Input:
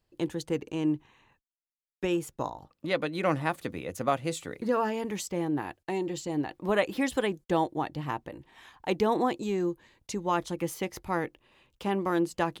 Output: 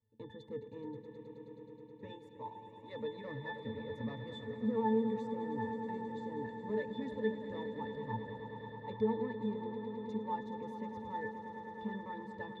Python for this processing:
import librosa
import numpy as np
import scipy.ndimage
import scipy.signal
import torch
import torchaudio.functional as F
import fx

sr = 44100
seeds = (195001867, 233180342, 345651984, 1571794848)

y = fx.highpass(x, sr, hz=520.0, slope=6, at=(2.09, 2.93))
y = 10.0 ** (-25.0 / 20.0) * np.tanh(y / 10.0 ** (-25.0 / 20.0))
y = fx.octave_resonator(y, sr, note='A', decay_s=0.21)
y = fx.echo_swell(y, sr, ms=106, loudest=5, wet_db=-12.5)
y = F.gain(torch.from_numpy(y), 6.5).numpy()